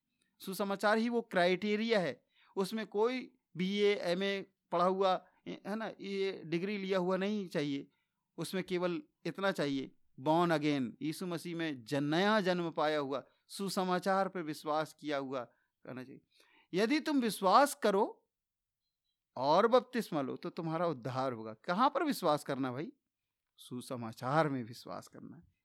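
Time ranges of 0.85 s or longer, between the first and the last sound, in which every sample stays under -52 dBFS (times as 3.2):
18.13–19.36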